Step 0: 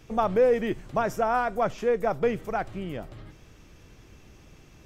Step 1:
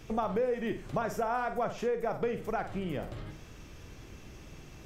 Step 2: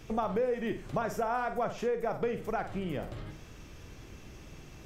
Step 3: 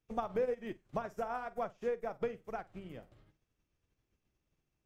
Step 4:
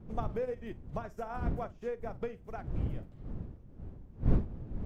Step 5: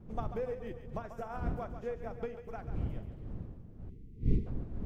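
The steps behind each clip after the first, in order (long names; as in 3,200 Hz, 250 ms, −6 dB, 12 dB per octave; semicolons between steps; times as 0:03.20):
on a send: flutter between parallel walls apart 8.2 metres, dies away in 0.3 s; on the sum: downward compressor 3 to 1, threshold −34 dBFS, peak gain reduction 13.5 dB; level +2.5 dB
no processing that can be heard
expander for the loud parts 2.5 to 1, over −49 dBFS; level −2 dB
wind on the microphone 210 Hz −40 dBFS; low-shelf EQ 100 Hz +11 dB; level −2.5 dB
echo with a time of its own for lows and highs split 440 Hz, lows 242 ms, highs 140 ms, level −10 dB; gain on a spectral selection 0:03.89–0:04.46, 480–1,900 Hz −22 dB; level −2 dB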